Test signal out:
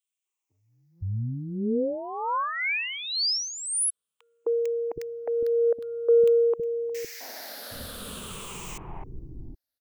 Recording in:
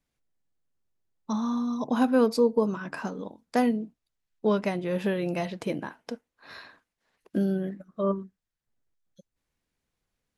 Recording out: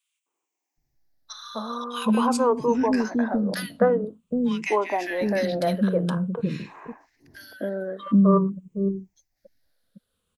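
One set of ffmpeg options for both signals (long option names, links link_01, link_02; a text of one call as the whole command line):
ffmpeg -i in.wav -filter_complex "[0:a]afftfilt=real='re*pow(10,13/40*sin(2*PI*(0.66*log(max(b,1)*sr/1024/100)/log(2)-(-0.48)*(pts-256)/sr)))':imag='im*pow(10,13/40*sin(2*PI*(0.66*log(max(b,1)*sr/1024/100)/log(2)-(-0.48)*(pts-256)/sr)))':win_size=1024:overlap=0.75,acontrast=46,acrossover=split=340|1600[link_01][link_02][link_03];[link_02]adelay=260[link_04];[link_01]adelay=770[link_05];[link_05][link_04][link_03]amix=inputs=3:normalize=0" out.wav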